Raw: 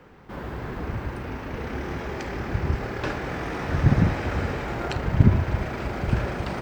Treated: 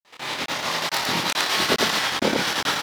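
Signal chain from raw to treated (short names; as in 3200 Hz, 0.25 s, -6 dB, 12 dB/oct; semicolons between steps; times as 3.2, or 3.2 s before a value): HPF 730 Hz 6 dB/oct; AGC gain up to 13 dB; step gate ".xx.xxx.x" 133 bpm -60 dB; loudspeakers at several distances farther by 19 m -1 dB, 87 m -1 dB; speed mistake 33 rpm record played at 78 rpm; gain -3 dB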